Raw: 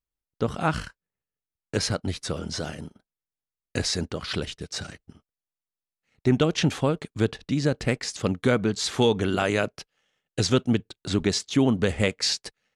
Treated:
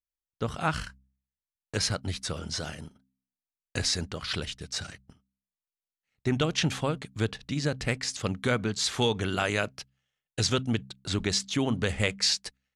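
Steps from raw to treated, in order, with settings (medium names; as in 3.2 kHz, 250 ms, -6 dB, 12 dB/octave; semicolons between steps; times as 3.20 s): gate -47 dBFS, range -9 dB; peaking EQ 340 Hz -7 dB 2.6 oct; de-hum 65.37 Hz, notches 4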